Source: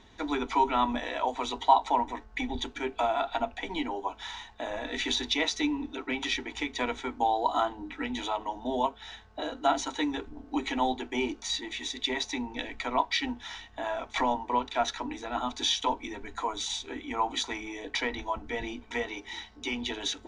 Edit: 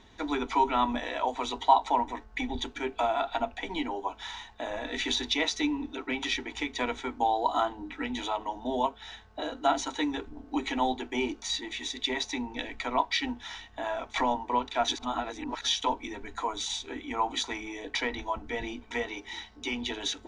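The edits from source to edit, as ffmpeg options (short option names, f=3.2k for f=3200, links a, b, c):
-filter_complex "[0:a]asplit=3[a][b][c];[a]atrim=end=14.882[d];[b]atrim=start=14.878:end=15.672,asetpts=PTS-STARTPTS,areverse[e];[c]atrim=start=15.668[f];[d][e]acrossfade=d=0.004:c1=hsin:c2=hsin[g];[g][f]acrossfade=d=0.004:c1=hsin:c2=hsin"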